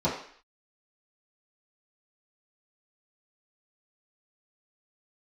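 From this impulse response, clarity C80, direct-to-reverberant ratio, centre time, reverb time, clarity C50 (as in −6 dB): 9.0 dB, −11.0 dB, 35 ms, 0.55 s, 5.5 dB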